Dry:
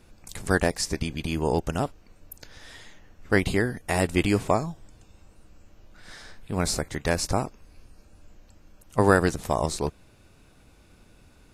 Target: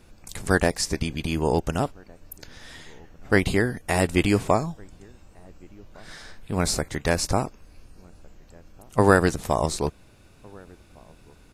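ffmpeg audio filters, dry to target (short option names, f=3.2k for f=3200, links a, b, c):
-filter_complex "[0:a]asplit=2[a][b];[b]adelay=1458,volume=-27dB,highshelf=f=4k:g=-32.8[c];[a][c]amix=inputs=2:normalize=0,volume=2dB"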